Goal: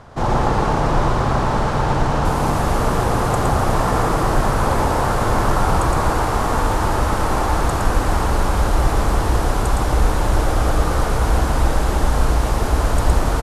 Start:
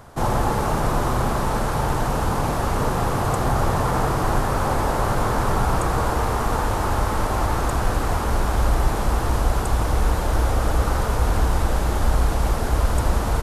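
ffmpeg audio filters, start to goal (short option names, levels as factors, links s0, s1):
-af "asetnsamples=n=441:p=0,asendcmd='2.25 lowpass f 12000',lowpass=5700,aecho=1:1:114:0.708,volume=1.26"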